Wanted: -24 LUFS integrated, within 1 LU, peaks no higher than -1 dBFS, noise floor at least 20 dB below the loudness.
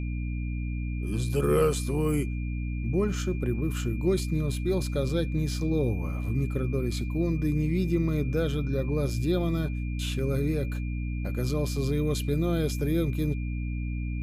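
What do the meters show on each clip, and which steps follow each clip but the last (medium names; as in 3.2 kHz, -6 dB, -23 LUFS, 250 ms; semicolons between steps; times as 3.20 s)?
hum 60 Hz; highest harmonic 300 Hz; hum level -28 dBFS; steady tone 2.4 kHz; tone level -46 dBFS; loudness -28.5 LUFS; peak level -13.0 dBFS; loudness target -24.0 LUFS
-> hum notches 60/120/180/240/300 Hz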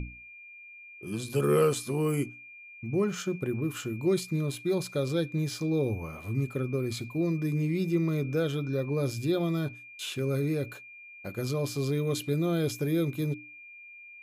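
hum not found; steady tone 2.4 kHz; tone level -46 dBFS
-> band-stop 2.4 kHz, Q 30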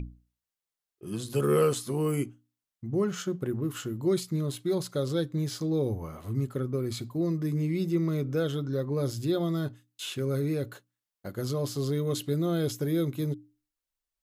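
steady tone not found; loudness -30.0 LUFS; peak level -14.0 dBFS; loudness target -24.0 LUFS
-> trim +6 dB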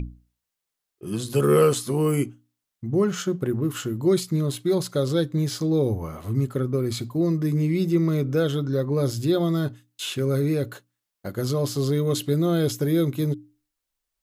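loudness -24.0 LUFS; peak level -8.0 dBFS; noise floor -84 dBFS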